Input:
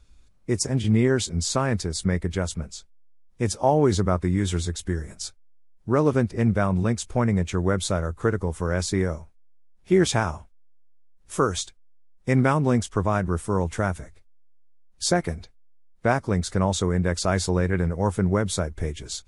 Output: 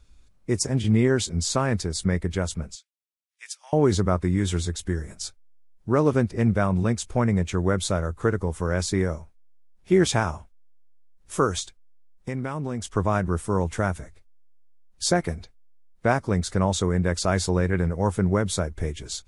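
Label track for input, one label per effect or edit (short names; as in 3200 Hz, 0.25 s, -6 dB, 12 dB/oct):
2.750000	3.730000	ladder high-pass 1600 Hz, resonance 25%
11.590000	12.870000	compressor, threshold -26 dBFS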